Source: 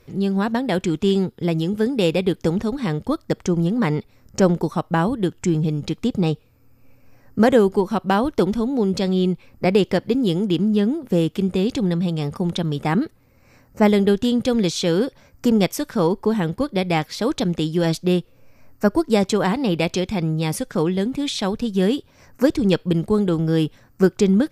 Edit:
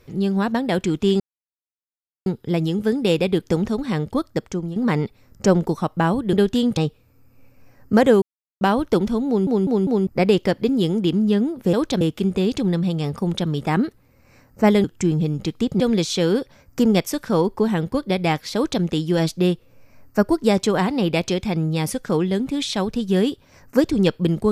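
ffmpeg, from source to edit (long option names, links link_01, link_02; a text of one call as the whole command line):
ffmpeg -i in.wav -filter_complex "[0:a]asplit=15[link_01][link_02][link_03][link_04][link_05][link_06][link_07][link_08][link_09][link_10][link_11][link_12][link_13][link_14][link_15];[link_01]atrim=end=1.2,asetpts=PTS-STARTPTS,afade=type=out:start_time=1.196:duration=0.004:curve=hsin,apad=pad_dur=1.06[link_16];[link_02]atrim=start=1.2:end=3.7,asetpts=PTS-STARTPTS,afade=type=in:duration=0.004:curve=hsin,afade=type=out:start_time=1.99:duration=0.51:silence=0.251189[link_17];[link_03]atrim=start=3.7:end=5.272,asetpts=PTS-STARTPTS,afade=type=in:duration=0.004:curve=hsin:silence=0.251189[link_18];[link_04]atrim=start=14.018:end=14.462[link_19];[link_05]atrim=start=6.228:end=7.68,asetpts=PTS-STARTPTS,afade=type=out:start_time=1.448:duration=0.004:curve=hsin[link_20];[link_06]atrim=start=7.68:end=8.07,asetpts=PTS-STARTPTS,volume=0[link_21];[link_07]atrim=start=8.07:end=8.932,asetpts=PTS-STARTPTS,afade=type=in:duration=0.004:curve=hsin[link_22];[link_08]atrim=start=8.728:end=8.932[link_23];[link_09]atrim=start=8.728:end=8.932[link_24];[link_10]atrim=start=8.728:end=8.932[link_25];[link_11]atrim=start=9.528:end=11.192[link_26];[link_12]atrim=start=17.208:end=17.492[link_27];[link_13]atrim=start=11.188:end=14.022[link_28];[link_14]atrim=start=5.268:end=6.232[link_29];[link_15]atrim=start=14.458[link_30];[link_16][link_17][link_18]concat=n=3:v=0:a=1[link_31];[link_31][link_19]acrossfade=duration=0.004:curve1=hsin:curve2=hsin[link_32];[link_20][link_21][link_22]concat=n=3:v=0:a=1[link_33];[link_32][link_33]acrossfade=duration=0.004:curve1=hsin:curve2=hsin[link_34];[link_34][link_23]acrossfade=duration=0.004:curve1=hsin:curve2=hsin[link_35];[link_35][link_24]acrossfade=duration=0.004:curve1=hsin:curve2=hsin[link_36];[link_36][link_25]acrossfade=duration=0.004:curve1=hsin:curve2=hsin[link_37];[link_37][link_26]acrossfade=duration=0.004:curve1=hsin:curve2=hsin[link_38];[link_38][link_27]acrossfade=duration=0.004:curve1=hsin:curve2=hsin[link_39];[link_39][link_28]acrossfade=duration=0.004:curve1=hsin:curve2=hsin[link_40];[link_40][link_29]acrossfade=duration=0.004:curve1=hsin:curve2=hsin[link_41];[link_41][link_30]acrossfade=duration=0.004:curve1=hsin:curve2=hsin" out.wav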